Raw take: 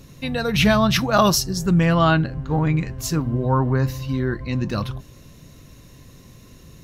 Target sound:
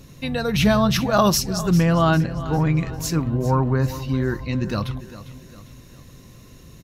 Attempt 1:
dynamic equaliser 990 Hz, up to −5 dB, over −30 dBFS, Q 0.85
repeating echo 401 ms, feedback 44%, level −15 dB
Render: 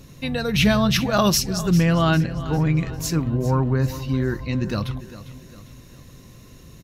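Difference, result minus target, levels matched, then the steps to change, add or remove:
1,000 Hz band −2.5 dB
change: dynamic equaliser 2,300 Hz, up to −5 dB, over −30 dBFS, Q 0.85

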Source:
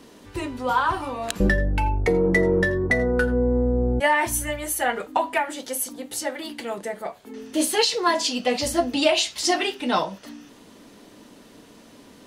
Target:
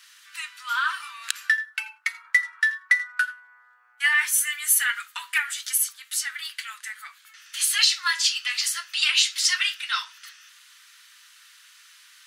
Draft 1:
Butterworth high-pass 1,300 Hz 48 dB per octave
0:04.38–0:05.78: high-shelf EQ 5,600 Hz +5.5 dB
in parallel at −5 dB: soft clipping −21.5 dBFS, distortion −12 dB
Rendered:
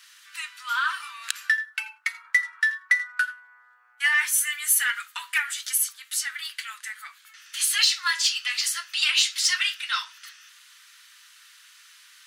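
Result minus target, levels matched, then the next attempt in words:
soft clipping: distortion +12 dB
Butterworth high-pass 1,300 Hz 48 dB per octave
0:04.38–0:05.78: high-shelf EQ 5,600 Hz +5.5 dB
in parallel at −5 dB: soft clipping −12 dBFS, distortion −23 dB

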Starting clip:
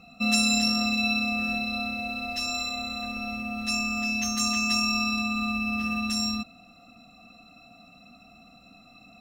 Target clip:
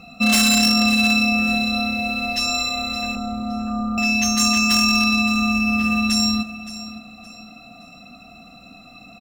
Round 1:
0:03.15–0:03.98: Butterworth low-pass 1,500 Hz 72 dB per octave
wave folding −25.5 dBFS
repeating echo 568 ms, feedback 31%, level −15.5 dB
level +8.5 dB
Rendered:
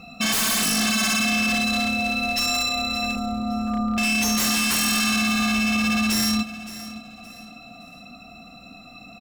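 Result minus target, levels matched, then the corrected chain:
wave folding: distortion +15 dB
0:03.15–0:03.98: Butterworth low-pass 1,500 Hz 72 dB per octave
wave folding −18.5 dBFS
repeating echo 568 ms, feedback 31%, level −15.5 dB
level +8.5 dB

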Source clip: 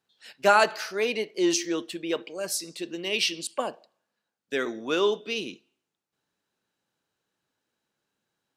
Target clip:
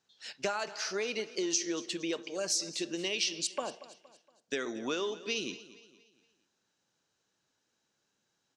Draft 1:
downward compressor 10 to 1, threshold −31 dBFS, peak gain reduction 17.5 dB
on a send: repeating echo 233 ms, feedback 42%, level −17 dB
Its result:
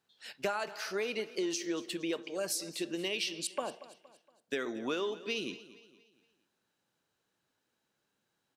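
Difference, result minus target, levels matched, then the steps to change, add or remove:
8,000 Hz band −4.0 dB
add after downward compressor: low-pass with resonance 6,300 Hz, resonance Q 2.7

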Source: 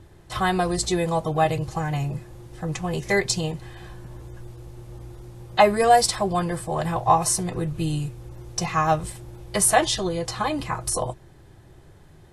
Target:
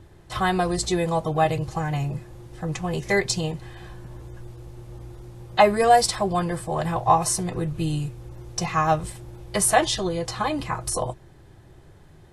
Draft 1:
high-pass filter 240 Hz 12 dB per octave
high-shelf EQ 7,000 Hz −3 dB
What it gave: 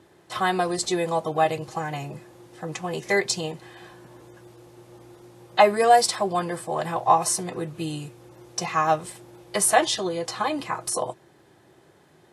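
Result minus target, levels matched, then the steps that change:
250 Hz band −3.0 dB
remove: high-pass filter 240 Hz 12 dB per octave

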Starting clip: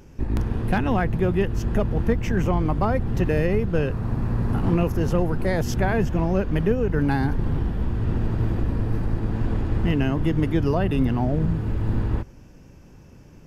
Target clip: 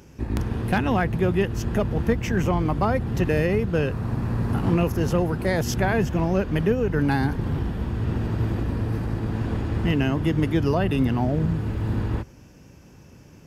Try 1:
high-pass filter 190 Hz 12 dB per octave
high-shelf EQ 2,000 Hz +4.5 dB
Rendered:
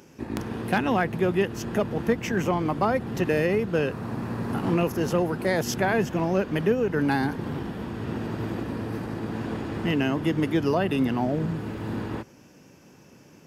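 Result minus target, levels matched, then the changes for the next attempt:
125 Hz band −5.0 dB
change: high-pass filter 58 Hz 12 dB per octave

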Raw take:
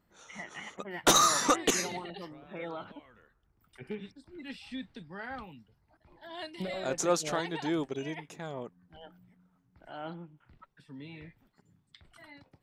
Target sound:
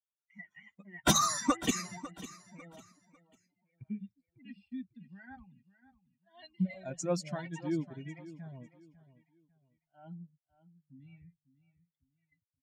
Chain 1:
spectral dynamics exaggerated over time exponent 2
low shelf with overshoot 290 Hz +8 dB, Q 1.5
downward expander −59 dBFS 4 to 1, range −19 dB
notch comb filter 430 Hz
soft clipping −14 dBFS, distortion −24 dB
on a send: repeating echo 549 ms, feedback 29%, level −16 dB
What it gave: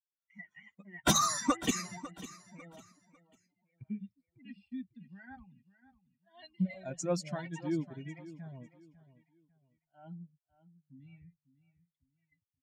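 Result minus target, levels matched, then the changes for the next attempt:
soft clipping: distortion +19 dB
change: soft clipping −3.5 dBFS, distortion −43 dB

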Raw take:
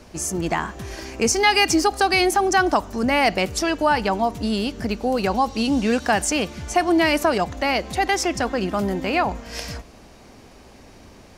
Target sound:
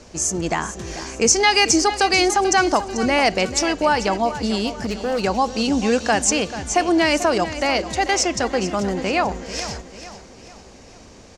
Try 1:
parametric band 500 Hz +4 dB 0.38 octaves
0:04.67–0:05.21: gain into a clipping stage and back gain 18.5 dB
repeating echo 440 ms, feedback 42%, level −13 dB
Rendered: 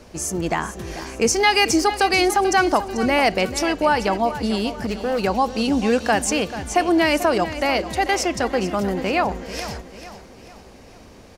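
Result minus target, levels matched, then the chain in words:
8,000 Hz band −5.0 dB
low-pass with resonance 7,000 Hz, resonance Q 2.3
parametric band 500 Hz +4 dB 0.38 octaves
0:04.67–0:05.21: gain into a clipping stage and back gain 18.5 dB
repeating echo 440 ms, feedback 42%, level −13 dB

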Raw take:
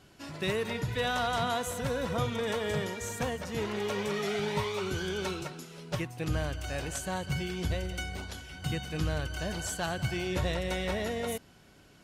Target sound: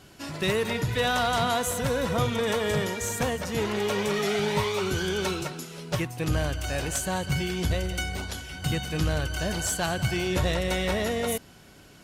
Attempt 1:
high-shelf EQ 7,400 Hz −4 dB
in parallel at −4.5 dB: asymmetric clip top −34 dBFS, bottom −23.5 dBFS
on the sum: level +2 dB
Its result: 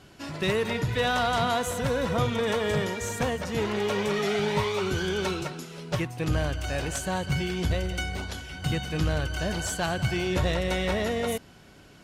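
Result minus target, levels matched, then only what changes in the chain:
8,000 Hz band −4.0 dB
change: high-shelf EQ 7,400 Hz +5 dB

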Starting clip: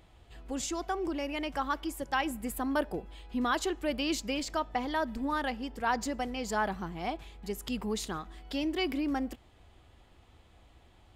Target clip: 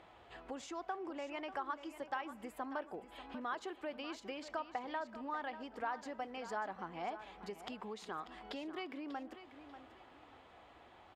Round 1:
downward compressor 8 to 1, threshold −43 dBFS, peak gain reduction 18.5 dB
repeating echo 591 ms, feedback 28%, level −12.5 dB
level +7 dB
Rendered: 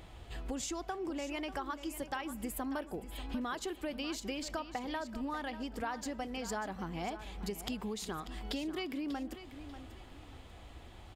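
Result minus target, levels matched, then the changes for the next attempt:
1,000 Hz band −4.0 dB
add after downward compressor: resonant band-pass 1,000 Hz, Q 0.72

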